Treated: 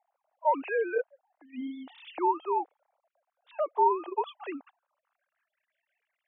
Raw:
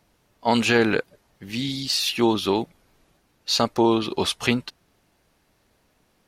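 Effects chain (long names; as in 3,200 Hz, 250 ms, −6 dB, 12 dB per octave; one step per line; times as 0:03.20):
three sine waves on the formant tracks
band-pass filter sweep 750 Hz → 2,100 Hz, 0:04.61–0:05.59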